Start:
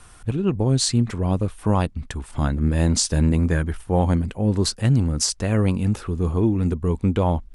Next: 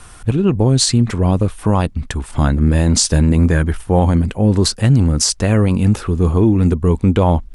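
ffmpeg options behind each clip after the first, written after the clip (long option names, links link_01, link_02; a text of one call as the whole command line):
ffmpeg -i in.wav -af "alimiter=limit=-12dB:level=0:latency=1:release=32,volume=8dB" out.wav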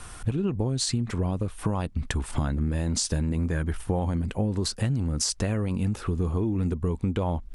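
ffmpeg -i in.wav -af "acompressor=threshold=-20dB:ratio=12,volume=-2.5dB" out.wav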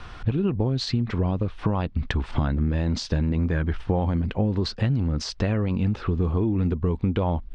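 ffmpeg -i in.wav -af "lowpass=frequency=4400:width=0.5412,lowpass=frequency=4400:width=1.3066,volume=3dB" out.wav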